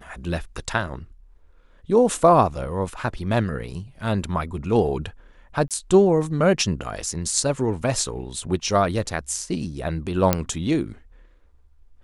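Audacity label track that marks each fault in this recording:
5.680000	5.710000	drop-out 27 ms
10.330000	10.330000	click −3 dBFS

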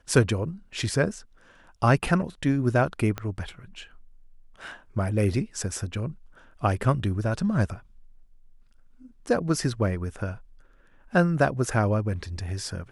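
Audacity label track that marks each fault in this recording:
3.180000	3.180000	click −16 dBFS

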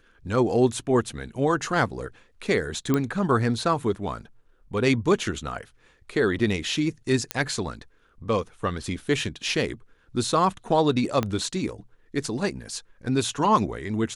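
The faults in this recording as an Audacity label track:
2.940000	2.940000	click −10 dBFS
7.310000	7.310000	click −8 dBFS
11.230000	11.230000	click −12 dBFS

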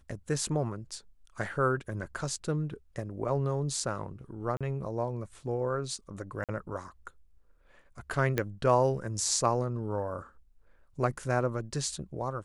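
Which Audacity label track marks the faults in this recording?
4.570000	4.610000	drop-out 36 ms
6.440000	6.490000	drop-out 47 ms
8.380000	8.380000	click −14 dBFS

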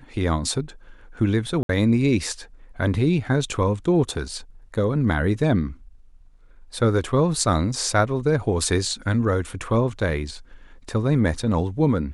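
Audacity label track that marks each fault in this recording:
1.630000	1.690000	drop-out 62 ms

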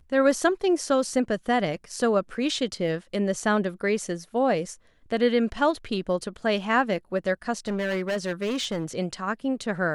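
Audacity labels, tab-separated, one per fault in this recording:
7.680000	8.850000	clipping −23.5 dBFS

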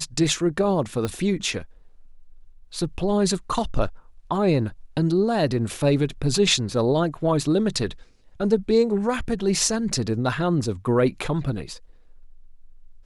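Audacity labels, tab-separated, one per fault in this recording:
1.050000	1.050000	click −13 dBFS

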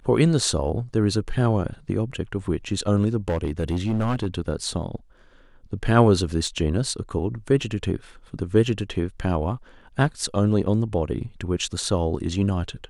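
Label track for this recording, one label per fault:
3.290000	4.270000	clipping −19 dBFS
6.470000	6.470000	drop-out 2.7 ms

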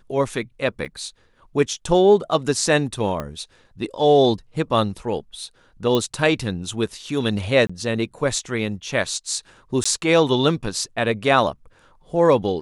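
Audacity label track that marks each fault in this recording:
0.850000	0.860000	drop-out 5.6 ms
3.200000	3.200000	click −14 dBFS
5.950000	5.950000	click −9 dBFS
7.670000	7.700000	drop-out 25 ms
9.840000	9.860000	drop-out 15 ms

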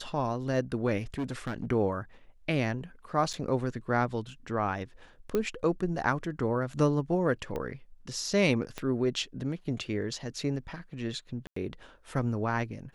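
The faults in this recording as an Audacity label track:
1.140000	1.650000	clipping −28.5 dBFS
3.330000	3.340000	drop-out 7.2 ms
5.350000	5.350000	click −16 dBFS
7.560000	7.560000	click −22 dBFS
8.780000	8.780000	click −20 dBFS
11.470000	11.560000	drop-out 94 ms

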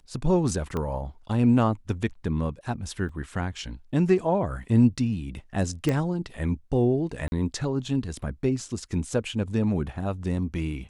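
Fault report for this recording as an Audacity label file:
0.770000	0.770000	click −18 dBFS
3.090000	3.090000	drop-out 3.1 ms
5.890000	5.890000	click −13 dBFS
7.280000	7.320000	drop-out 41 ms

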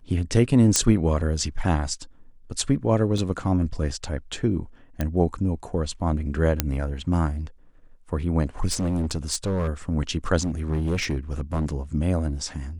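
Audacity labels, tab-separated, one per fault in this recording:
0.760000	0.760000	click −3 dBFS
3.180000	3.180000	drop-out 2.8 ms
5.010000	5.010000	click −12 dBFS
6.600000	6.600000	click −3 dBFS
8.670000	9.690000	clipping −21 dBFS
10.420000	11.740000	clipping −20.5 dBFS

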